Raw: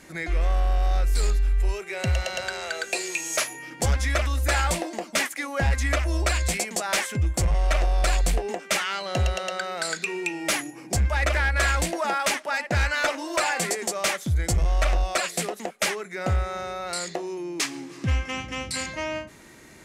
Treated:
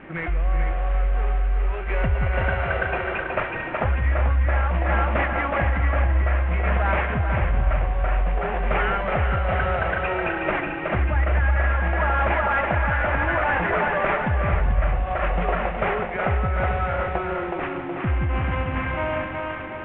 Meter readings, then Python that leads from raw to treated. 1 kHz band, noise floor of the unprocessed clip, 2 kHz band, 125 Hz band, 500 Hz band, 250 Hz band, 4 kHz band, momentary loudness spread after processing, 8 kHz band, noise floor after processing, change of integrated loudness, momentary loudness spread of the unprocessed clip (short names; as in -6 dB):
+5.5 dB, -45 dBFS, +2.5 dB, +4.0 dB, +4.0 dB, +3.0 dB, -10.5 dB, 5 LU, under -40 dB, -30 dBFS, +2.5 dB, 7 LU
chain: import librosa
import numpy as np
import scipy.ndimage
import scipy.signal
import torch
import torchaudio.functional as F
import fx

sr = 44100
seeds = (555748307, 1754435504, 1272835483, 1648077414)

p1 = fx.cvsd(x, sr, bps=16000)
p2 = scipy.signal.sosfilt(scipy.signal.butter(2, 2000.0, 'lowpass', fs=sr, output='sos'), p1)
p3 = p2 + fx.echo_split(p2, sr, split_hz=310.0, low_ms=166, high_ms=370, feedback_pct=52, wet_db=-4.0, dry=0)
p4 = fx.dynamic_eq(p3, sr, hz=310.0, q=1.0, threshold_db=-43.0, ratio=4.0, max_db=-7)
p5 = fx.over_compress(p4, sr, threshold_db=-29.0, ratio=-0.5)
p6 = p4 + F.gain(torch.from_numpy(p5), -1.5).numpy()
y = p6 + 10.0 ** (-7.0 / 20.0) * np.pad(p6, (int(438 * sr / 1000.0), 0))[:len(p6)]